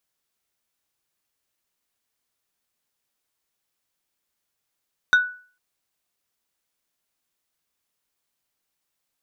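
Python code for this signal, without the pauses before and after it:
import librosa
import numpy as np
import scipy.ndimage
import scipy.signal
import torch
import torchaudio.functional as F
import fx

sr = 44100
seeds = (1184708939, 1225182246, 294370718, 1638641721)

y = fx.strike_wood(sr, length_s=0.45, level_db=-9.5, body='plate', hz=1480.0, decay_s=0.42, tilt_db=11.5, modes=5)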